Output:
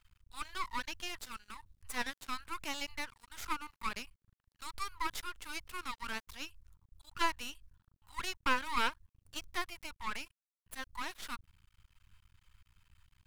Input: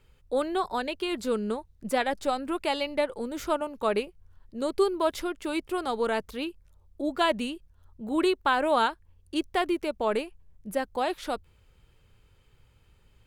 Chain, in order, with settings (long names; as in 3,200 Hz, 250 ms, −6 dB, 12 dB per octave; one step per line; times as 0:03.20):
Chebyshev band-stop filter 100–960 Hz, order 5
half-wave rectification